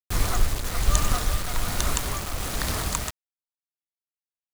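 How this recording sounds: tremolo triangle 1.2 Hz, depth 65%; a quantiser's noise floor 6-bit, dither none

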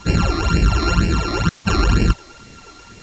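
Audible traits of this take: a buzz of ramps at a fixed pitch in blocks of 32 samples; phasing stages 12, 2.1 Hz, lowest notch 150–1200 Hz; a quantiser's noise floor 8-bit, dither triangular; µ-law

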